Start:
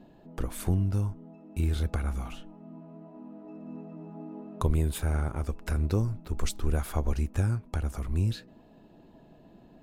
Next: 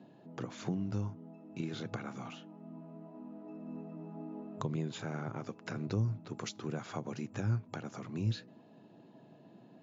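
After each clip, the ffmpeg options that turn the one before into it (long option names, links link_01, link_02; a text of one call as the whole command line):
ffmpeg -i in.wav -filter_complex "[0:a]acrossover=split=210[link_01][link_02];[link_02]acompressor=threshold=-34dB:ratio=4[link_03];[link_01][link_03]amix=inputs=2:normalize=0,afftfilt=real='re*between(b*sr/4096,100,7300)':imag='im*between(b*sr/4096,100,7300)':win_size=4096:overlap=0.75,volume=-2.5dB" out.wav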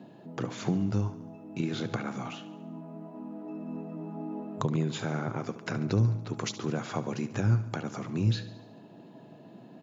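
ffmpeg -i in.wav -af "aecho=1:1:71|142|213|284|355|426:0.188|0.111|0.0656|0.0387|0.0228|0.0135,volume=7dB" out.wav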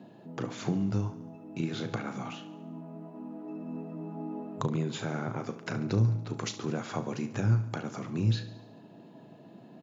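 ffmpeg -i in.wav -filter_complex "[0:a]asplit=2[link_01][link_02];[link_02]adelay=36,volume=-12dB[link_03];[link_01][link_03]amix=inputs=2:normalize=0,volume=-1.5dB" out.wav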